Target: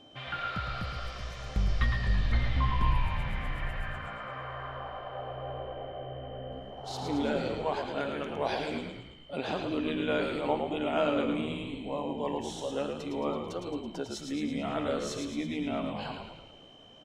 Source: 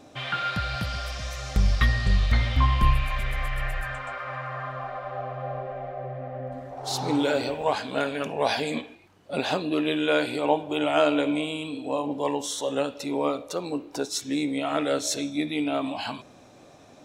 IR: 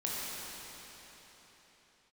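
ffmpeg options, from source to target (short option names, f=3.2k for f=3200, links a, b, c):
-filter_complex "[0:a]aemphasis=mode=reproduction:type=50kf,aeval=exprs='val(0)+0.00355*sin(2*PI*3100*n/s)':c=same,asplit=8[a][b][c][d][e][f][g][h];[b]adelay=110,afreqshift=-59,volume=-5dB[i];[c]adelay=220,afreqshift=-118,volume=-10.4dB[j];[d]adelay=330,afreqshift=-177,volume=-15.7dB[k];[e]adelay=440,afreqshift=-236,volume=-21.1dB[l];[f]adelay=550,afreqshift=-295,volume=-26.4dB[m];[g]adelay=660,afreqshift=-354,volume=-31.8dB[n];[h]adelay=770,afreqshift=-413,volume=-37.1dB[o];[a][i][j][k][l][m][n][o]amix=inputs=8:normalize=0,volume=-7dB"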